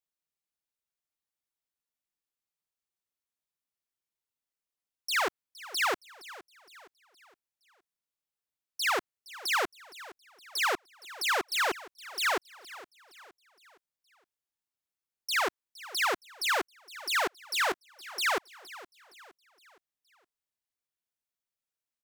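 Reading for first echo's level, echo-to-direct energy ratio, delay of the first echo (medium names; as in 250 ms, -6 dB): -18.0 dB, -17.0 dB, 466 ms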